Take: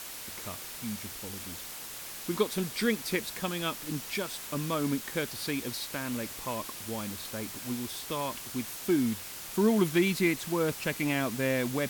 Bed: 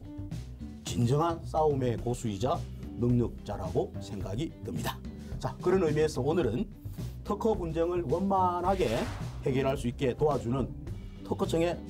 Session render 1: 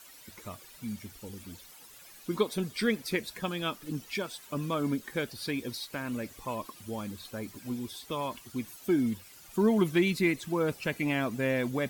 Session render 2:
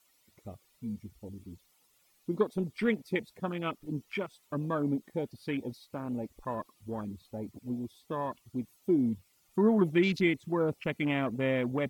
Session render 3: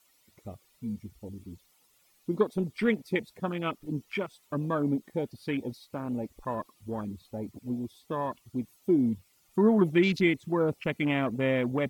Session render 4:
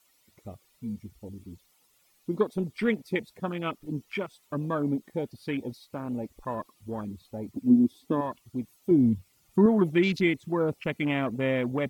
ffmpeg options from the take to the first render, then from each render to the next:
ffmpeg -i in.wav -af "afftdn=noise_reduction=14:noise_floor=-42" out.wav
ffmpeg -i in.wav -af "bandreject=frequency=1600:width=6.4,afwtdn=0.0141" out.wav
ffmpeg -i in.wav -af "volume=2.5dB" out.wav
ffmpeg -i in.wav -filter_complex "[0:a]asettb=1/sr,asplit=3[link_01][link_02][link_03];[link_01]atrim=end=7.564[link_04];[link_02]atrim=start=7.56:end=8.21,asetpts=PTS-STARTPTS,afade=type=in:duration=0.004:curve=qsin,afade=type=out:start_time=0.646:duration=0.004:curve=qsin,equalizer=frequency=260:width=1.5:gain=15[link_05];[link_03]atrim=start=8.206[link_06];[link_04][link_05]acrossfade=duration=0.004:curve1=hsin:curve2=qsin[link_07];[link_07][link_06]acrossfade=duration=0.004:curve1=qsin:curve2=hsin,asettb=1/sr,asplit=3[link_08][link_09][link_10];[link_08]atrim=end=8.914[link_11];[link_09]atrim=start=8.91:end=9.66,asetpts=PTS-STARTPTS,afade=type=in:duration=0.004:curve=qsin,afade=type=out:start_time=0.746:duration=0.004:curve=qsin,equalizer=frequency=88:width=0.43:gain=8.5[link_12];[link_10]atrim=start=9.656[link_13];[link_11][link_12]acrossfade=duration=0.004:curve1=hsin:curve2=qsin[link_14];[link_14][link_13]acrossfade=duration=0.004:curve1=qsin:curve2=hsin" out.wav

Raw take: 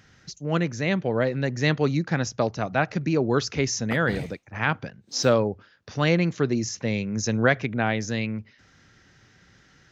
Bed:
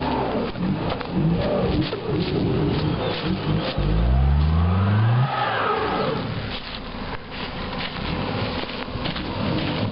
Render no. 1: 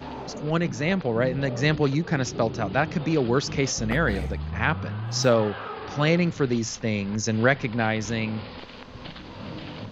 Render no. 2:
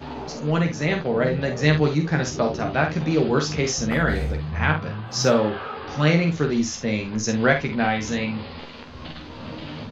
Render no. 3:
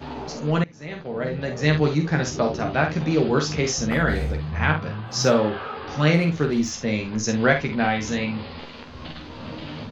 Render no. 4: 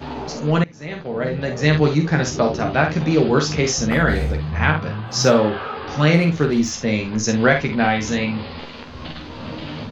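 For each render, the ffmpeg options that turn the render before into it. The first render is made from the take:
ffmpeg -i in.wav -i bed.wav -filter_complex "[1:a]volume=-13dB[link_01];[0:a][link_01]amix=inputs=2:normalize=0" out.wav
ffmpeg -i in.wav -filter_complex "[0:a]asplit=2[link_01][link_02];[link_02]adelay=13,volume=-5dB[link_03];[link_01][link_03]amix=inputs=2:normalize=0,aecho=1:1:47|72:0.473|0.188" out.wav
ffmpeg -i in.wav -filter_complex "[0:a]asettb=1/sr,asplit=3[link_01][link_02][link_03];[link_01]atrim=end=6.144[link_04];[link_02]atrim=start=6.14:end=6.71,asetpts=PTS-STARTPTS,afade=type=in:duration=0.004:curve=qsin,afade=type=out:start_time=0.566:duration=0.004:curve=qsin,adynamicsmooth=sensitivity=5:basefreq=6200[link_05];[link_03]atrim=start=6.706[link_06];[link_04][link_05]acrossfade=duration=0.004:curve1=hsin:curve2=qsin[link_07];[link_07][link_06]acrossfade=duration=0.004:curve1=qsin:curve2=hsin,asplit=2[link_08][link_09];[link_08]atrim=end=0.64,asetpts=PTS-STARTPTS,afade=type=out:start_time=0.636:duration=0.004:curve=hsin:silence=0.0668344[link_10];[link_09]atrim=start=0.64,asetpts=PTS-STARTPTS,afade=type=in:duration=1.25:silence=0.0668344[link_11];[link_10][link_11]concat=n=2:v=0:a=1" out.wav
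ffmpeg -i in.wav -af "volume=4dB,alimiter=limit=-2dB:level=0:latency=1" out.wav

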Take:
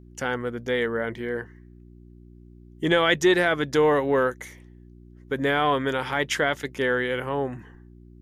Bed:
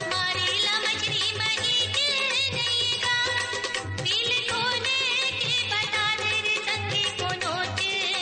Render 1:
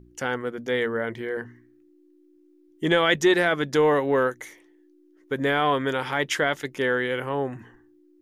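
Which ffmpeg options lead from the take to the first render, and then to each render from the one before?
ffmpeg -i in.wav -af "bandreject=frequency=60:width_type=h:width=4,bandreject=frequency=120:width_type=h:width=4,bandreject=frequency=180:width_type=h:width=4,bandreject=frequency=240:width_type=h:width=4" out.wav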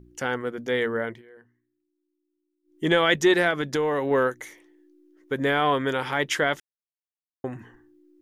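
ffmpeg -i in.wav -filter_complex "[0:a]asettb=1/sr,asplit=3[link_01][link_02][link_03];[link_01]atrim=end=3.504[link_04];[link_02]atrim=start=3.5:end=4.11,asetpts=PTS-STARTPTS,afade=type=in:duration=0.004:curve=qsin,afade=type=out:start_time=0.606:duration=0.004:curve=qsin,acompressor=threshold=-21dB:ratio=4:attack=3.2:release=140:knee=1:detection=peak[link_05];[link_03]atrim=start=4.106[link_06];[link_04][link_05]acrossfade=duration=0.004:curve1=hsin:curve2=qsin[link_07];[link_07][link_06]acrossfade=duration=0.004:curve1=qsin:curve2=hsin,asplit=5[link_08][link_09][link_10][link_11][link_12];[link_08]atrim=end=1.22,asetpts=PTS-STARTPTS,afade=type=out:start_time=0.97:duration=0.25:curve=qsin:silence=0.0944061[link_13];[link_09]atrim=start=1.22:end=2.63,asetpts=PTS-STARTPTS,volume=-20.5dB[link_14];[link_10]atrim=start=2.63:end=6.6,asetpts=PTS-STARTPTS,afade=type=in:duration=0.25:curve=qsin:silence=0.0944061,afade=type=out:start_time=3.966:duration=0.004:curve=hsin[link_15];[link_11]atrim=start=6.6:end=7.44,asetpts=PTS-STARTPTS,volume=0[link_16];[link_12]atrim=start=7.44,asetpts=PTS-STARTPTS,afade=type=in:duration=0.004:curve=hsin[link_17];[link_13][link_14][link_15][link_16][link_17]concat=n=5:v=0:a=1" out.wav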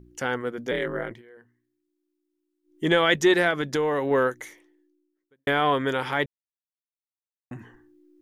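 ffmpeg -i in.wav -filter_complex "[0:a]asettb=1/sr,asplit=3[link_01][link_02][link_03];[link_01]atrim=end=0.714[link_04];[link_02]atrim=start=0.71:end=1.11,asetpts=PTS-STARTPTS,afade=type=in:duration=0.004:curve=qsin,afade=type=out:start_time=0.396:duration=0.004:curve=qsin,aeval=exprs='val(0)*sin(2*PI*80*n/s)':channel_layout=same[link_05];[link_03]atrim=start=1.106[link_06];[link_04][link_05]acrossfade=duration=0.004:curve1=hsin:curve2=qsin[link_07];[link_07][link_06]acrossfade=duration=0.004:curve1=qsin:curve2=hsin,asplit=4[link_08][link_09][link_10][link_11];[link_08]atrim=end=5.47,asetpts=PTS-STARTPTS,afade=type=out:start_time=4.45:duration=1.02:curve=qua[link_12];[link_09]atrim=start=5.47:end=6.26,asetpts=PTS-STARTPTS,afade=type=in:duration=0.004:curve=hsin,afade=type=out:start_time=0.786:duration=0.004:curve=hsin[link_13];[link_10]atrim=start=6.26:end=7.51,asetpts=PTS-STARTPTS,volume=0[link_14];[link_11]atrim=start=7.51,asetpts=PTS-STARTPTS,afade=type=in:duration=0.004:curve=hsin[link_15];[link_12][link_13][link_14][link_15]concat=n=4:v=0:a=1" out.wav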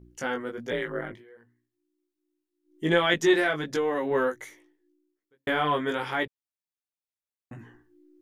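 ffmpeg -i in.wav -af "flanger=delay=17:depth=2.9:speed=1.3" out.wav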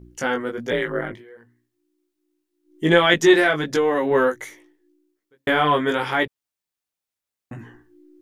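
ffmpeg -i in.wav -af "volume=7dB" out.wav

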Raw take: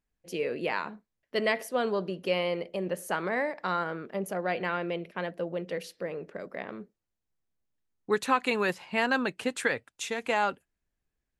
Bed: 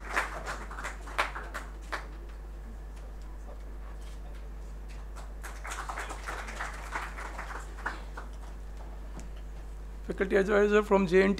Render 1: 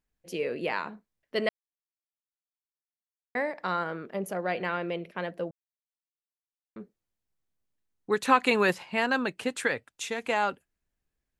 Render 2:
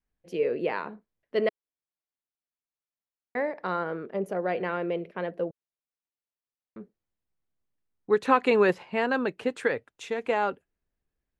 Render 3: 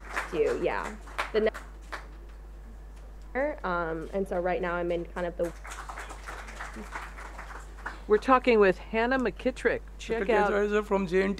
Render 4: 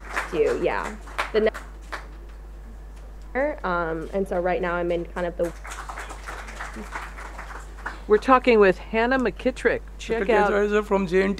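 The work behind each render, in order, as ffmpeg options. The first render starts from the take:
ffmpeg -i in.wav -filter_complex "[0:a]asplit=7[link_01][link_02][link_03][link_04][link_05][link_06][link_07];[link_01]atrim=end=1.49,asetpts=PTS-STARTPTS,afade=type=out:start_time=1.486:duration=0.004:curve=hsin[link_08];[link_02]atrim=start=1.49:end=3.35,asetpts=PTS-STARTPTS,volume=0[link_09];[link_03]atrim=start=3.35:end=5.51,asetpts=PTS-STARTPTS,afade=type=in:duration=0.004:curve=hsin,afade=type=out:start_time=2.156:duration=0.004:curve=hsin[link_10];[link_04]atrim=start=5.51:end=6.76,asetpts=PTS-STARTPTS,volume=0[link_11];[link_05]atrim=start=6.76:end=8.252,asetpts=PTS-STARTPTS,afade=type=in:duration=0.004:curve=hsin[link_12];[link_06]atrim=start=8.248:end=8.832,asetpts=PTS-STARTPTS,volume=4dB[link_13];[link_07]atrim=start=8.828[link_14];[link_08][link_09][link_10][link_11][link_12]concat=n=5:v=0:a=1[link_15];[link_15][link_13]acrossfade=duration=0.004:curve1=hsin:curve2=hsin[link_16];[link_16][link_14]acrossfade=duration=0.004:curve1=hsin:curve2=hsin" out.wav
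ffmpeg -i in.wav -af "lowpass=frequency=2100:poles=1,adynamicequalizer=threshold=0.00708:dfrequency=430:dqfactor=1.9:tfrequency=430:tqfactor=1.9:attack=5:release=100:ratio=0.375:range=3:mode=boostabove:tftype=bell" out.wav
ffmpeg -i in.wav -i bed.wav -filter_complex "[1:a]volume=-2.5dB[link_01];[0:a][link_01]amix=inputs=2:normalize=0" out.wav
ffmpeg -i in.wav -af "volume=5dB" out.wav

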